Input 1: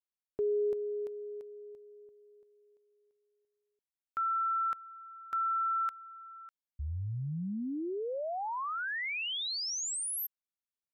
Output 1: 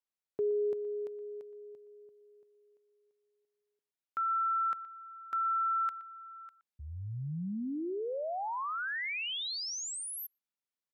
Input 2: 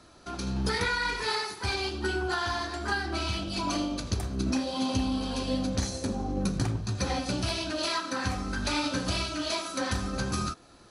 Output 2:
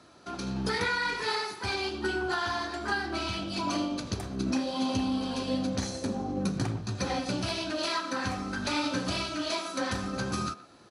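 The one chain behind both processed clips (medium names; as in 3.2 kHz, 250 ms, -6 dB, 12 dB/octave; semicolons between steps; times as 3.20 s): high-pass 110 Hz 12 dB/octave; treble shelf 6.6 kHz -6 dB; speakerphone echo 120 ms, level -16 dB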